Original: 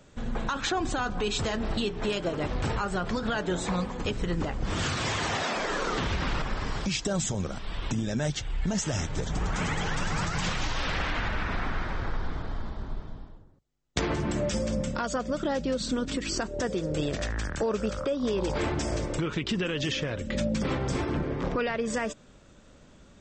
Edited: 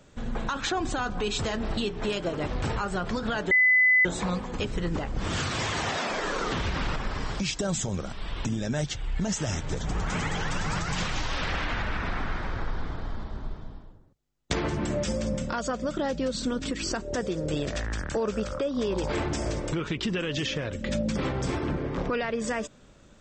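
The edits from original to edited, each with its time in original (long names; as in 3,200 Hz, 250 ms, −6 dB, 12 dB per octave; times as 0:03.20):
0:03.51: insert tone 2,010 Hz −16.5 dBFS 0.54 s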